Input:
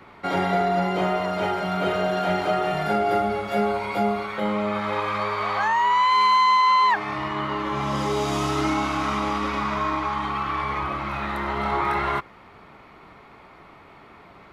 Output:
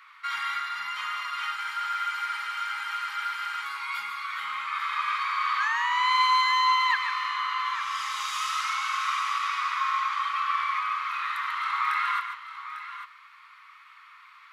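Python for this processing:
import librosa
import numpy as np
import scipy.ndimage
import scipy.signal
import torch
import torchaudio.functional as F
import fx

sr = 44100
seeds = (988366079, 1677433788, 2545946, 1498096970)

p1 = fx.add_hum(x, sr, base_hz=50, snr_db=34)
p2 = scipy.signal.sosfilt(scipy.signal.ellip(4, 1.0, 40, 1100.0, 'highpass', fs=sr, output='sos'), p1)
p3 = p2 + fx.echo_multitap(p2, sr, ms=(143, 849), db=(-7.5, -11.5), dry=0)
y = fx.spec_freeze(p3, sr, seeds[0], at_s=1.59, hold_s=2.05)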